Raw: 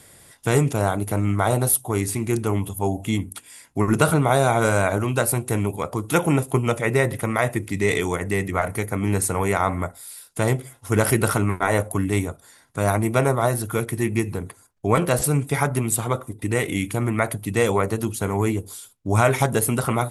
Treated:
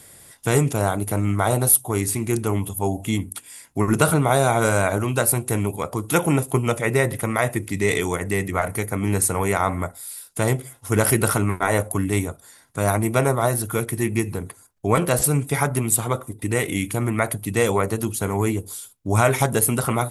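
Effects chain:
high-shelf EQ 8,300 Hz +6.5 dB

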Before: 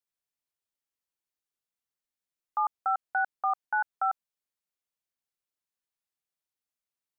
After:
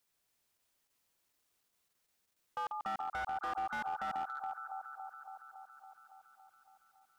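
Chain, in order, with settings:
output level in coarse steps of 23 dB
delay that swaps between a low-pass and a high-pass 140 ms, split 1,200 Hz, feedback 84%, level −4 dB
slew-rate limiting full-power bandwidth 5.2 Hz
level +11.5 dB

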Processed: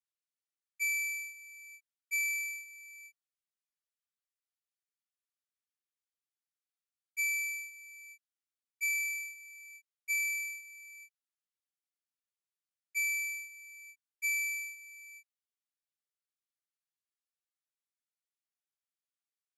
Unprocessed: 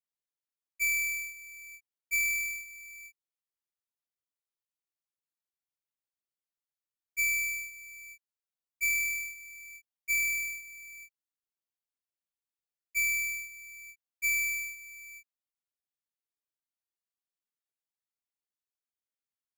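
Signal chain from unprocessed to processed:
linear-phase brick-wall band-pass 1,100–12,000 Hz
level −3.5 dB
Ogg Vorbis 192 kbit/s 48,000 Hz

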